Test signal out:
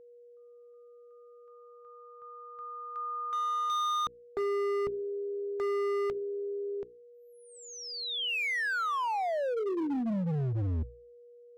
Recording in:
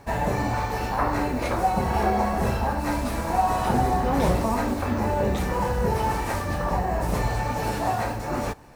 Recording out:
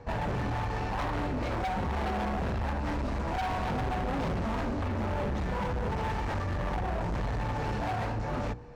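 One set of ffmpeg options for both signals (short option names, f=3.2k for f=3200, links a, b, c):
-filter_complex "[0:a]bandreject=f=60:t=h:w=6,bandreject=f=120:t=h:w=6,bandreject=f=180:t=h:w=6,bandreject=f=240:t=h:w=6,bandreject=f=300:t=h:w=6,bandreject=f=360:t=h:w=6,bandreject=f=420:t=h:w=6,bandreject=f=480:t=h:w=6,acrossover=split=3600[a][b];[b]acompressor=threshold=-36dB:ratio=4:attack=1:release=60[c];[a][c]amix=inputs=2:normalize=0,lowpass=f=7.2k:w=0.5412,lowpass=f=7.2k:w=1.3066,aemphasis=mode=reproduction:type=50fm,acrossover=split=200|4400[d][e][f];[d]acontrast=55[g];[g][e][f]amix=inputs=3:normalize=0,aeval=exprs='val(0)+0.00398*sin(2*PI*480*n/s)':c=same,asoftclip=type=hard:threshold=-25.5dB,volume=-3.5dB"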